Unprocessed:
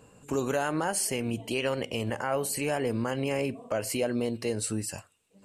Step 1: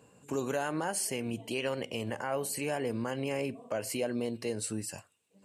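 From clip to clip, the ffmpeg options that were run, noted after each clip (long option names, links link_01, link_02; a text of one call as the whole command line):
ffmpeg -i in.wav -af "highpass=100,bandreject=frequency=1300:width=17,volume=-4dB" out.wav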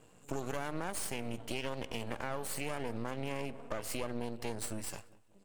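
ffmpeg -i in.wav -filter_complex "[0:a]aeval=exprs='max(val(0),0)':channel_layout=same,asplit=2[link_01][link_02];[link_02]adelay=190,lowpass=frequency=1700:poles=1,volume=-19.5dB,asplit=2[link_03][link_04];[link_04]adelay=190,lowpass=frequency=1700:poles=1,volume=0.42,asplit=2[link_05][link_06];[link_06]adelay=190,lowpass=frequency=1700:poles=1,volume=0.42[link_07];[link_01][link_03][link_05][link_07]amix=inputs=4:normalize=0,acompressor=threshold=-36dB:ratio=3,volume=3dB" out.wav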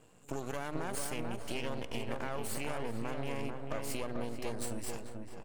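ffmpeg -i in.wav -filter_complex "[0:a]asplit=2[link_01][link_02];[link_02]adelay=440,lowpass=frequency=1500:poles=1,volume=-3.5dB,asplit=2[link_03][link_04];[link_04]adelay=440,lowpass=frequency=1500:poles=1,volume=0.4,asplit=2[link_05][link_06];[link_06]adelay=440,lowpass=frequency=1500:poles=1,volume=0.4,asplit=2[link_07][link_08];[link_08]adelay=440,lowpass=frequency=1500:poles=1,volume=0.4,asplit=2[link_09][link_10];[link_10]adelay=440,lowpass=frequency=1500:poles=1,volume=0.4[link_11];[link_01][link_03][link_05][link_07][link_09][link_11]amix=inputs=6:normalize=0,volume=-1dB" out.wav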